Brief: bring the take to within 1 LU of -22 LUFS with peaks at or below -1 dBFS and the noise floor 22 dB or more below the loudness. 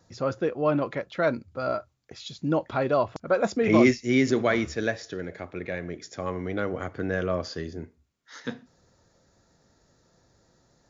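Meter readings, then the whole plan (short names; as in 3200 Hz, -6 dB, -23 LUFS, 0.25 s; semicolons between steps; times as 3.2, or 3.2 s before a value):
loudness -27.0 LUFS; peak -8.5 dBFS; loudness target -22.0 LUFS
-> gain +5 dB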